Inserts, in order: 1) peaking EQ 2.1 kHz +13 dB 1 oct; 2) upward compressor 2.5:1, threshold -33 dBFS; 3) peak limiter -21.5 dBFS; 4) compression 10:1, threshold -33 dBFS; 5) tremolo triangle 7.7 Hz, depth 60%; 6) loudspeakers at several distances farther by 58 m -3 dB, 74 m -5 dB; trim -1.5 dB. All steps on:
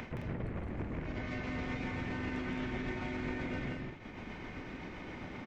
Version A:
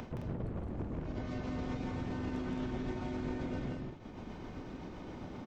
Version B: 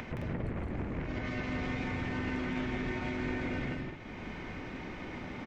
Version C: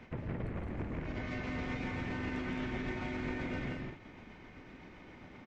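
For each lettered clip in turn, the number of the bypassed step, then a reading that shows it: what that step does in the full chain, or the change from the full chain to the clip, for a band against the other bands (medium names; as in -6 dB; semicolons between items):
1, 2 kHz band -9.0 dB; 5, loudness change +3.0 LU; 2, momentary loudness spread change +8 LU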